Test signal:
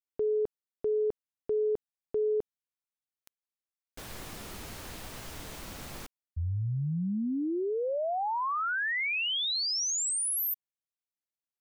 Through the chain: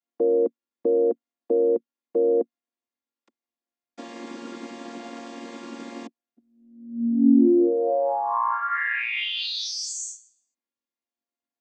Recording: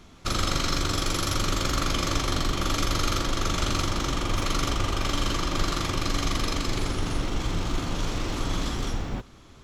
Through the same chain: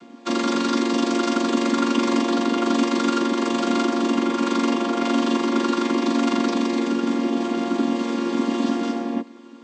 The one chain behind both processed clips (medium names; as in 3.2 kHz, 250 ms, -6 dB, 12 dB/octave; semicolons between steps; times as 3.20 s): vocoder on a held chord minor triad, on A#3; trim +9 dB